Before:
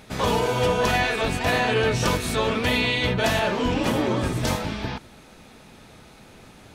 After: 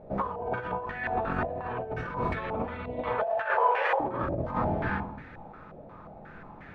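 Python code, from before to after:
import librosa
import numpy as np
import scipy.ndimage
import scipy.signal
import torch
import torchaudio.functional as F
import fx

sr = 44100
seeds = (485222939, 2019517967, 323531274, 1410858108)

y = fx.steep_highpass(x, sr, hz=430.0, slope=72, at=(2.96, 4.0))
y = fx.room_shoebox(y, sr, seeds[0], volume_m3=140.0, walls='mixed', distance_m=0.79)
y = fx.over_compress(y, sr, threshold_db=-24.0, ratio=-0.5)
y = fx.filter_held_lowpass(y, sr, hz=5.6, low_hz=620.0, high_hz=1800.0)
y = F.gain(torch.from_numpy(y), -8.5).numpy()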